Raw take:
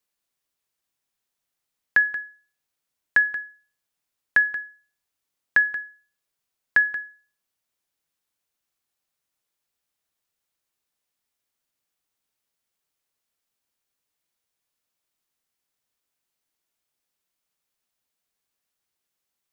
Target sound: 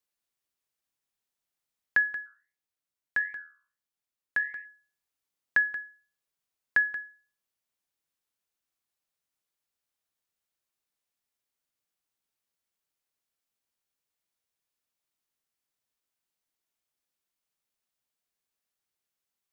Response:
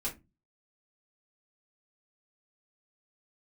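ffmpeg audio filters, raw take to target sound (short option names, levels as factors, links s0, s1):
-filter_complex "[0:a]asplit=3[s0][s1][s2];[s0]afade=t=out:st=2.25:d=0.02[s3];[s1]flanger=delay=9.2:depth=8.6:regen=75:speed=1.5:shape=triangular,afade=t=in:st=2.25:d=0.02,afade=t=out:st=4.64:d=0.02[s4];[s2]afade=t=in:st=4.64:d=0.02[s5];[s3][s4][s5]amix=inputs=3:normalize=0,volume=0.531"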